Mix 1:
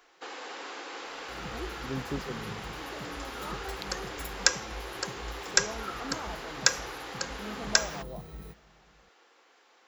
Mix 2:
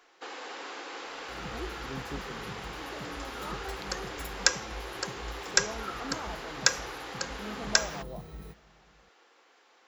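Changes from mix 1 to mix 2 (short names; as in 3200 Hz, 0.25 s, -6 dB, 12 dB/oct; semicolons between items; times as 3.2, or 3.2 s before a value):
speech -6.0 dB; master: add high shelf 11000 Hz -4 dB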